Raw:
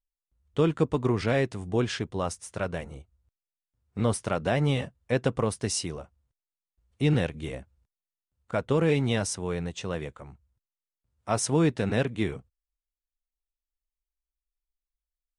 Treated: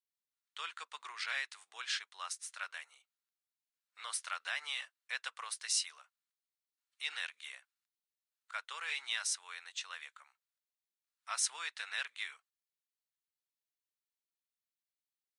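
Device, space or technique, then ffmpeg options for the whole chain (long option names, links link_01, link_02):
headphones lying on a table: -af "highpass=frequency=1300:width=0.5412,highpass=frequency=1300:width=1.3066,equalizer=frequency=4100:width_type=o:width=0.3:gain=5,volume=-3dB"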